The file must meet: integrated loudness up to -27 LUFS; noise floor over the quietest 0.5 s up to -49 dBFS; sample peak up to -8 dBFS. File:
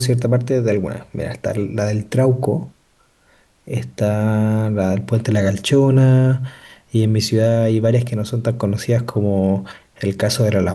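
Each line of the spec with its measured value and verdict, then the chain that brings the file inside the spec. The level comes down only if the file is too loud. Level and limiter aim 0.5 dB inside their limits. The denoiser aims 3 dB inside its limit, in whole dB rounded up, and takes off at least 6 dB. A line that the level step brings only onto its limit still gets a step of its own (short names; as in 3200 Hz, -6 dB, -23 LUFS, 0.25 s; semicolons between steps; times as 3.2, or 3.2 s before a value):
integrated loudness -18.0 LUFS: fail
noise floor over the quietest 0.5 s -58 dBFS: OK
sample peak -5.5 dBFS: fail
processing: gain -9.5 dB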